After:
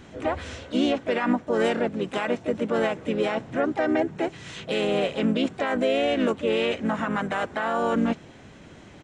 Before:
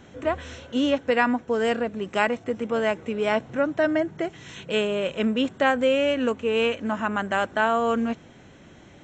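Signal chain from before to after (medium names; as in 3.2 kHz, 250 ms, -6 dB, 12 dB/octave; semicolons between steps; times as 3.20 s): peak limiter -17.5 dBFS, peak gain reduction 11.5 dB; harmony voices -4 st -8 dB, +4 st -7 dB; trim +1 dB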